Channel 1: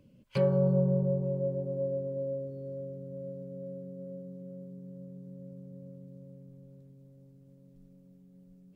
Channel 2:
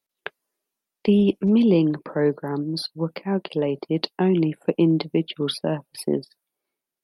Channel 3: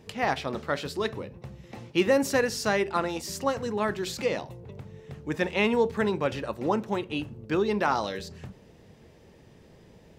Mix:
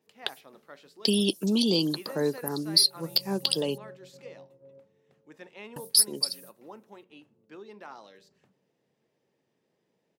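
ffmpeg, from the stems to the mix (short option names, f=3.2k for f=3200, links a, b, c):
-filter_complex "[0:a]acompressor=threshold=-30dB:ratio=6,adelay=2450,volume=-12.5dB[a];[1:a]aexciter=amount=14.2:drive=8.9:freq=3.6k,adynamicequalizer=threshold=0.0708:dfrequency=3900:dqfactor=0.7:tfrequency=3900:tqfactor=0.7:attack=5:release=100:ratio=0.375:range=3.5:mode=boostabove:tftype=highshelf,volume=-5.5dB,asplit=3[b][c][d];[b]atrim=end=3.78,asetpts=PTS-STARTPTS,afade=t=out:st=3.776:d=0.004:c=hsin[e];[c]atrim=start=3.78:end=5.76,asetpts=PTS-STARTPTS,volume=0[f];[d]atrim=start=5.76,asetpts=PTS-STARTPTS,afade=t=in:d=0.004:c=hsin[g];[e][f][g]concat=n=3:v=0:a=1[h];[2:a]highpass=200,volume=-19.5dB[i];[a][h]amix=inputs=2:normalize=0,agate=range=-21dB:threshold=-46dB:ratio=16:detection=peak,acompressor=threshold=-19dB:ratio=6,volume=0dB[j];[i][j]amix=inputs=2:normalize=0,lowshelf=f=66:g=-12"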